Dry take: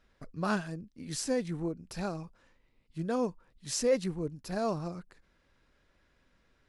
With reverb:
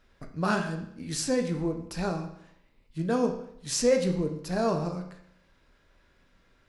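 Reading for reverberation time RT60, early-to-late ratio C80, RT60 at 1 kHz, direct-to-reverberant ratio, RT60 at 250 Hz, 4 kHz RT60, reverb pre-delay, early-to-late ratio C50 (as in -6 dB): 0.70 s, 11.5 dB, 0.70 s, 4.0 dB, 0.70 s, 0.65 s, 12 ms, 8.5 dB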